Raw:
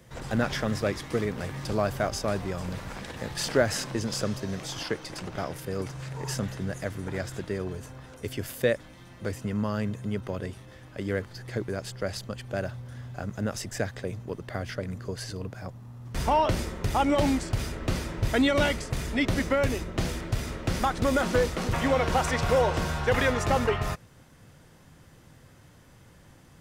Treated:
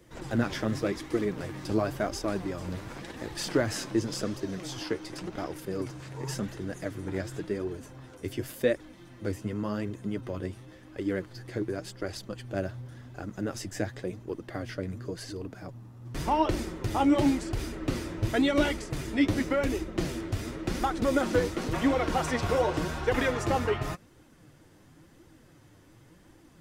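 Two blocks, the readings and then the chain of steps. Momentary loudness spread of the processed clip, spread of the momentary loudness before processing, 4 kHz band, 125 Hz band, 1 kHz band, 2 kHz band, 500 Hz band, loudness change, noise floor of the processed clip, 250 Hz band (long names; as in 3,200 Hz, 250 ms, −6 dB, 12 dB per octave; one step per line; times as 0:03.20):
12 LU, 12 LU, −3.5 dB, −4.0 dB, −3.0 dB, −4.0 dB, −2.0 dB, −2.0 dB, −56 dBFS, +1.0 dB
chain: parametric band 320 Hz +10.5 dB 0.43 octaves
flanger 0.91 Hz, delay 2 ms, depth 9.1 ms, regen +37%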